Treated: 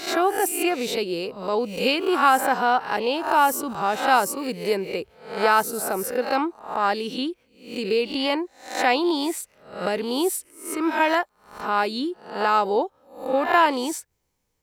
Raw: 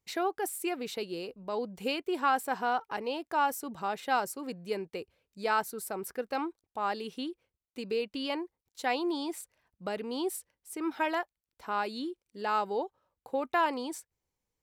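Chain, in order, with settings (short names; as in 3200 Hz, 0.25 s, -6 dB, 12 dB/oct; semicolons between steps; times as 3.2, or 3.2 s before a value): spectral swells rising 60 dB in 0.48 s; 4.37–4.89 high shelf 9200 Hz +7 dB; gain +9 dB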